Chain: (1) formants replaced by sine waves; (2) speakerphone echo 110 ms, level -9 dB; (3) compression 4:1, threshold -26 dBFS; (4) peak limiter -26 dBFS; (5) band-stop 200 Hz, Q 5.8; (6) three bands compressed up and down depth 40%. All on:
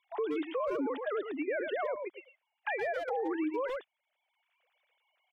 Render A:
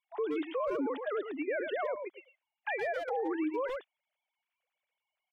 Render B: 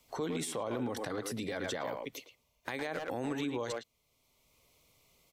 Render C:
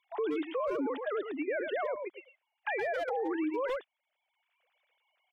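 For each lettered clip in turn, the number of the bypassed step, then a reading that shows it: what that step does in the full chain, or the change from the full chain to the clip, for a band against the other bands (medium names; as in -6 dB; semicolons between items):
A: 6, momentary loudness spread change -1 LU; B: 1, 4 kHz band +11.5 dB; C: 3, mean gain reduction 2.5 dB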